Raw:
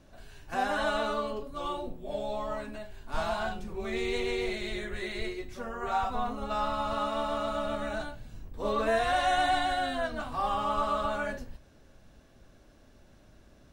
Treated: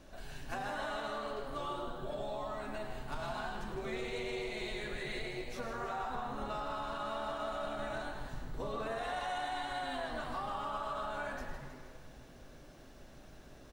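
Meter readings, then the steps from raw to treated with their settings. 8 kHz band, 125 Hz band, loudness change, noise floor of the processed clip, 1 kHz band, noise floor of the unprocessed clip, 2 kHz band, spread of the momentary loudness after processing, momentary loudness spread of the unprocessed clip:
−6.5 dB, −4.0 dB, −8.0 dB, −55 dBFS, −8.5 dB, −58 dBFS, −7.0 dB, 18 LU, 11 LU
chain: parametric band 120 Hz −6.5 dB 1.6 octaves
brickwall limiter −24.5 dBFS, peak gain reduction 7.5 dB
downward compressor 5 to 1, threshold −41 dBFS, peak gain reduction 11 dB
echo with shifted repeats 107 ms, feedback 57%, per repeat +120 Hz, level −10 dB
feedback echo at a low word length 159 ms, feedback 55%, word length 12 bits, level −8.5 dB
level +3 dB

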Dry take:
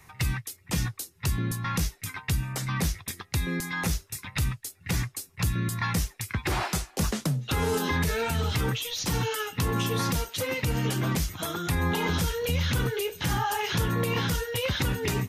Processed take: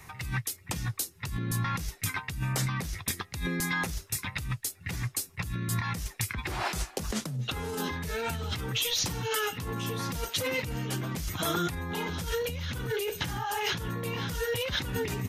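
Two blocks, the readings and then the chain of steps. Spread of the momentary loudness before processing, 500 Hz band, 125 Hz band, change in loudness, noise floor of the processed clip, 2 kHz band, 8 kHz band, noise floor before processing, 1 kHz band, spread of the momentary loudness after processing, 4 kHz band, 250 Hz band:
5 LU, −3.0 dB, −5.5 dB, −3.5 dB, −53 dBFS, −2.0 dB, −1.5 dB, −58 dBFS, −3.5 dB, 5 LU, −1.0 dB, −5.0 dB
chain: compressor whose output falls as the input rises −32 dBFS, ratio −1

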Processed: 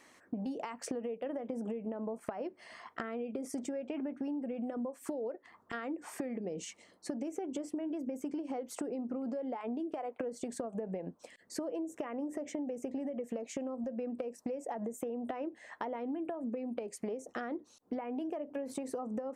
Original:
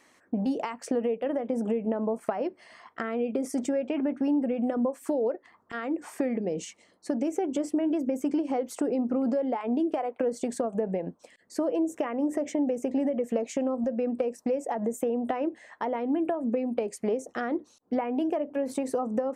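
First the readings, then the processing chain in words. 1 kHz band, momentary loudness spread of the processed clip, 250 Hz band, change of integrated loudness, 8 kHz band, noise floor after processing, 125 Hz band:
−9.5 dB, 5 LU, −10.0 dB, −10.0 dB, −5.0 dB, −65 dBFS, −8.0 dB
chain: downward compressor 5 to 1, threshold −36 dBFS, peak gain reduction 13 dB

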